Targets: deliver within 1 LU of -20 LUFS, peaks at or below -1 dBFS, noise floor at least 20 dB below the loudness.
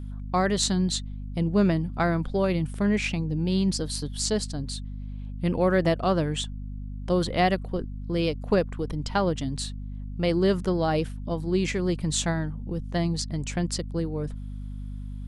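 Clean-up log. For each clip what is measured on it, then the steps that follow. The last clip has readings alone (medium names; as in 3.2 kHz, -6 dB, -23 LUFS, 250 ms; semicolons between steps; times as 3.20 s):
hum 50 Hz; highest harmonic 250 Hz; hum level -33 dBFS; loudness -26.5 LUFS; peak level -6.0 dBFS; loudness target -20.0 LUFS
-> hum notches 50/100/150/200/250 Hz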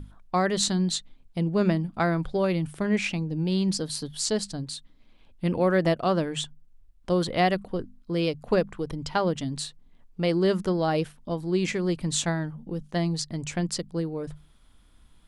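hum not found; loudness -27.0 LUFS; peak level -6.0 dBFS; loudness target -20.0 LUFS
-> trim +7 dB; peak limiter -1 dBFS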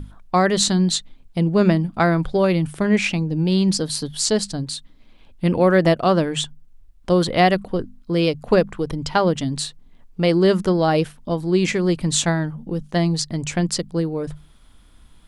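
loudness -20.0 LUFS; peak level -1.0 dBFS; noise floor -49 dBFS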